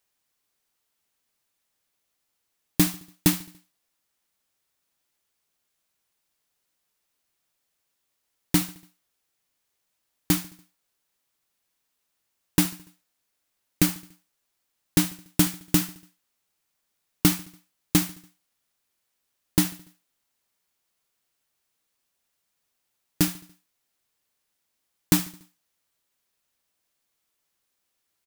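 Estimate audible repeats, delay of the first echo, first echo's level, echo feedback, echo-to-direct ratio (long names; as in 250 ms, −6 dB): 3, 72 ms, −21.0 dB, 55%, −19.5 dB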